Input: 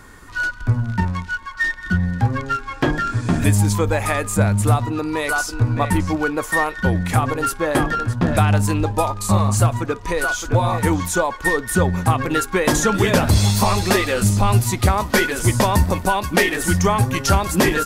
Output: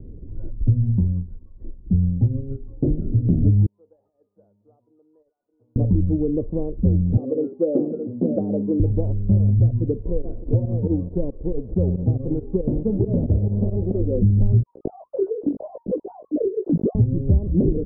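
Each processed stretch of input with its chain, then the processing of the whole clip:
0.99–2.99 s: low-pass 1.8 kHz + hard clipper -13 dBFS + upward expansion, over -31 dBFS
3.66–5.76 s: ladder band-pass 2.1 kHz, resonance 45% + compressor with a negative ratio -36 dBFS, ratio -0.5
7.17–8.80 s: high-pass 230 Hz 24 dB/octave + dynamic bell 530 Hz, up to +7 dB, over -35 dBFS, Q 3
10.01–13.99 s: formants flattened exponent 0.3 + volume shaper 138 bpm, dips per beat 2, -15 dB, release 75 ms
14.63–16.95 s: formants replaced by sine waves + chorus 1.6 Hz, delay 15.5 ms, depth 2.7 ms
whole clip: steep low-pass 510 Hz 36 dB/octave; bass shelf 220 Hz +10.5 dB; compression 2.5:1, threshold -17 dBFS

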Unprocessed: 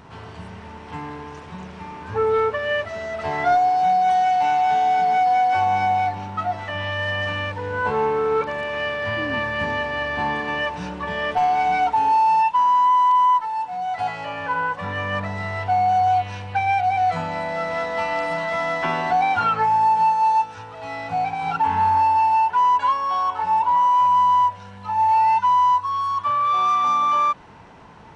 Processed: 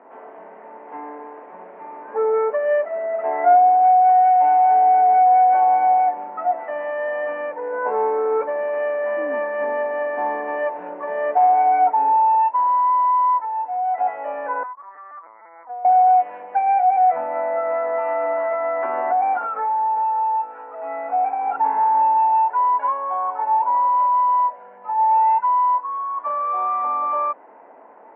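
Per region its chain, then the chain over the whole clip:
14.63–15.85 s: band-pass filter 1.1 kHz, Q 8.2 + LPC vocoder at 8 kHz pitch kept + loudspeaker Doppler distortion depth 0.2 ms
17.31–21.38 s: peaking EQ 1.3 kHz +7.5 dB 0.25 oct + compression, threshold -19 dBFS
whole clip: elliptic band-pass 260–2100 Hz, stop band 40 dB; peaking EQ 610 Hz +14.5 dB 1.3 oct; trim -7.5 dB

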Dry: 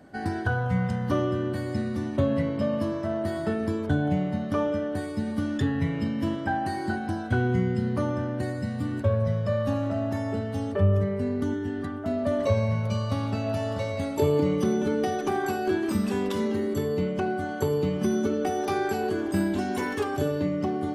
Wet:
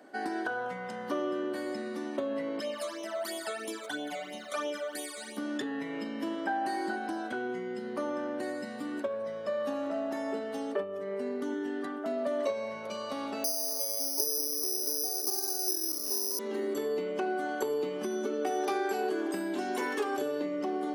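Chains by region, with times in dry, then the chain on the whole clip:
2.60–5.37 s: tilt EQ +4.5 dB/octave + phase shifter stages 12, 3 Hz, lowest notch 280–1600 Hz
13.44–16.39 s: steep high-pass 260 Hz 48 dB/octave + peaking EQ 2.1 kHz -13.5 dB 1.5 oct + careless resampling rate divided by 8×, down filtered, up zero stuff
whole clip: compression, threshold -26 dBFS; high-pass 290 Hz 24 dB/octave

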